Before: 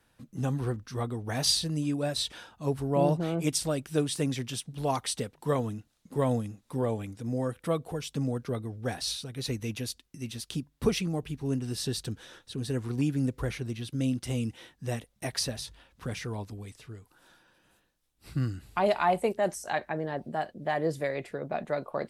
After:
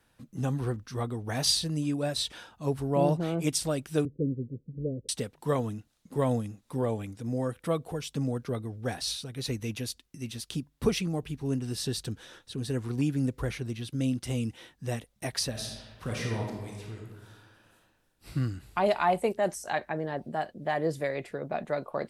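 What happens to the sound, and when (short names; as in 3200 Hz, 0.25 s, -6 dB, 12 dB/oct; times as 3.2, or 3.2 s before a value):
4.05–5.09 steep low-pass 550 Hz 96 dB/oct
15.5–18.34 reverb throw, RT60 1.3 s, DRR -1 dB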